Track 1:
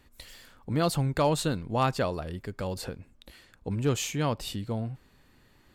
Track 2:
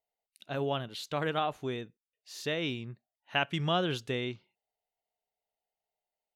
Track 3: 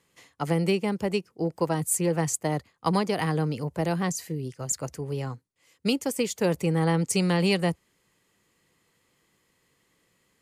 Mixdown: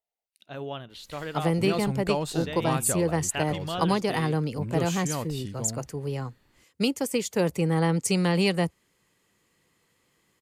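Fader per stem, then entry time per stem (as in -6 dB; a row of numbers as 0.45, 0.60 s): -4.0, -3.5, 0.0 dB; 0.90, 0.00, 0.95 s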